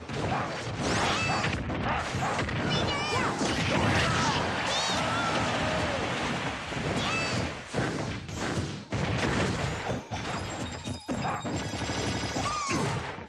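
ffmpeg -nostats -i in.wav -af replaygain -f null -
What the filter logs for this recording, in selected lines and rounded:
track_gain = +10.4 dB
track_peak = 0.151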